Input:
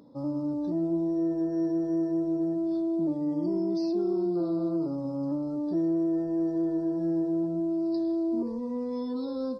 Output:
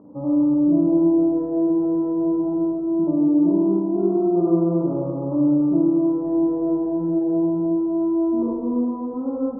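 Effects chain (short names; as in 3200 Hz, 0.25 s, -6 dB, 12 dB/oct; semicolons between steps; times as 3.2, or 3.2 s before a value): steep low-pass 1200 Hz 36 dB/oct; spring tank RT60 1.9 s, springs 41/51 ms, chirp 60 ms, DRR -2.5 dB; gain +5 dB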